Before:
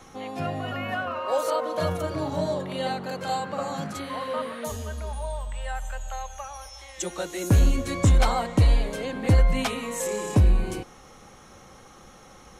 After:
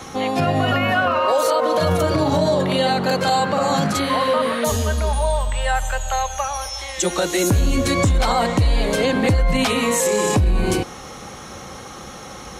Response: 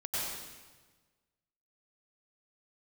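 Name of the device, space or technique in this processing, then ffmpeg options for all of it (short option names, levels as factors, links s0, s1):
mastering chain: -af "highpass=48,equalizer=f=4300:t=o:w=0.77:g=3,acompressor=threshold=0.0631:ratio=2.5,asoftclip=type=hard:threshold=0.15,alimiter=level_in=12.6:limit=0.891:release=50:level=0:latency=1,volume=0.376"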